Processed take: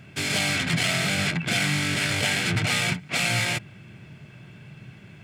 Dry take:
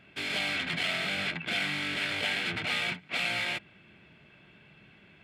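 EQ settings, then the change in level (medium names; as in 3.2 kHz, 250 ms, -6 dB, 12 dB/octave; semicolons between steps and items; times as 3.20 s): peaking EQ 120 Hz +14.5 dB 0.99 oct; resonant high shelf 4.7 kHz +8.5 dB, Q 1.5; +6.5 dB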